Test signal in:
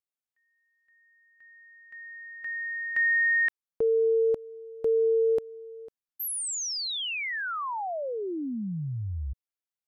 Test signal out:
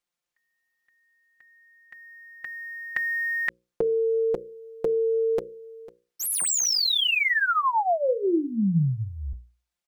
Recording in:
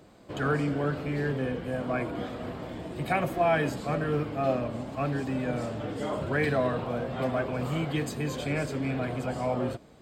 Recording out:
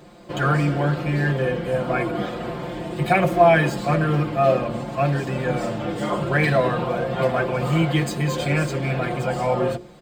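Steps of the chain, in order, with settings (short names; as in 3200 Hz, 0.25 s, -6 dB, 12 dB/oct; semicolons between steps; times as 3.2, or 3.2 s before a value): median filter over 3 samples; notches 60/120/180/240/300/360/420/480/540 Hz; comb 5.7 ms, depth 76%; gain +7 dB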